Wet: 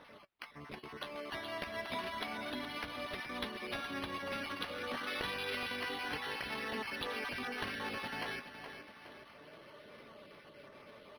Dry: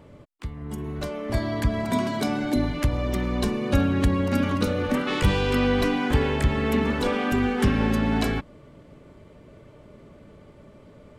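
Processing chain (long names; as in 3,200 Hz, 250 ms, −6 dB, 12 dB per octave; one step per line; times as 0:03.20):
time-frequency cells dropped at random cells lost 21%
meter weighting curve ITU-R 468
downward compressor 2 to 1, threshold −47 dBFS, peak gain reduction 14.5 dB
flanger 0.3 Hz, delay 3.8 ms, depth 9 ms, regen +63%
on a send: repeating echo 419 ms, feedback 45%, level −10 dB
on the sum: linearly interpolated sample-rate reduction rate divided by 6×
level +5 dB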